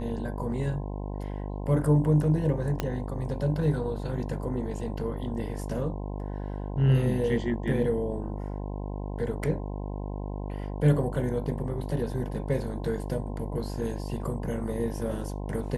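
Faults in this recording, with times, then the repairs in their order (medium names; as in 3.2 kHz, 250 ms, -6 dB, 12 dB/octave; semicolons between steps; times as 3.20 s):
buzz 50 Hz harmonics 21 -34 dBFS
2.80 s: pop -13 dBFS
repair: de-click; de-hum 50 Hz, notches 21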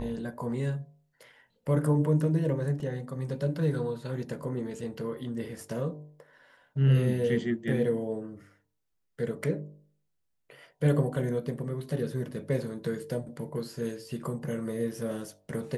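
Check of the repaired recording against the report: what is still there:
2.80 s: pop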